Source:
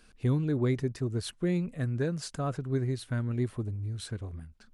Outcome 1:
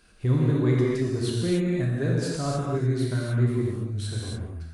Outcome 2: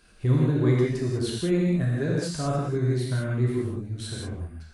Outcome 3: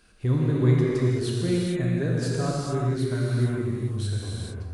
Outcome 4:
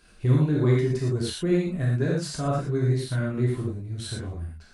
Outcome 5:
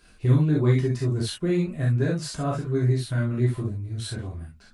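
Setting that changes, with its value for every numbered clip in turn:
non-linear reverb, gate: 320, 220, 480, 140, 90 ms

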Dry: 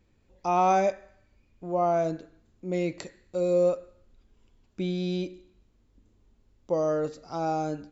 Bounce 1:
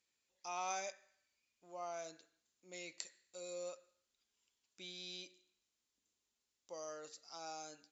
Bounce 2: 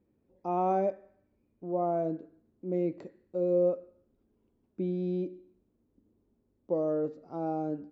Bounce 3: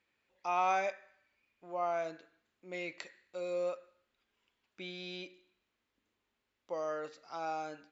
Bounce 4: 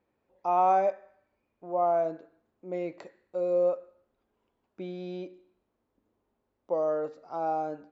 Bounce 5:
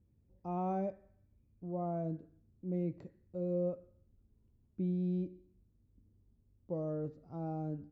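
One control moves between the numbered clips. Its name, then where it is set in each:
band-pass, frequency: 7000, 310, 2200, 780, 110 Hz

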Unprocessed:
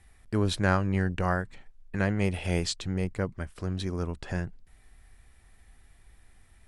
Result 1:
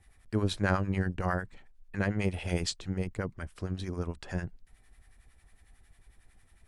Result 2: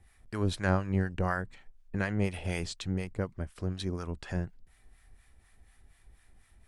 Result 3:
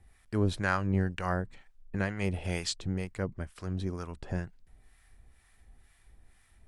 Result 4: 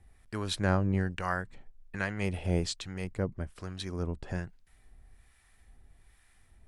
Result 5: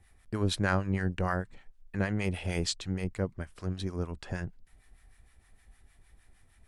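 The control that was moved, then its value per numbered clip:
harmonic tremolo, rate: 11, 4.1, 2.1, 1.2, 6.5 Hz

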